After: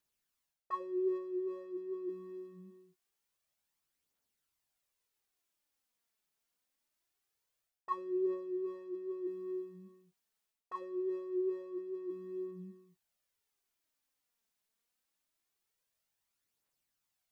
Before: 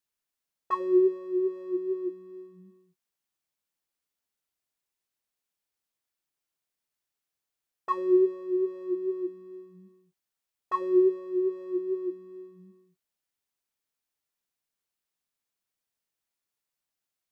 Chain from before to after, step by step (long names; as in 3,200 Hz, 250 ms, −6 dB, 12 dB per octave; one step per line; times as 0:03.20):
reversed playback
downward compressor 4 to 1, threshold −39 dBFS, peak gain reduction 18 dB
reversed playback
phase shifter 0.24 Hz, delay 4.8 ms, feedback 40%
level +1 dB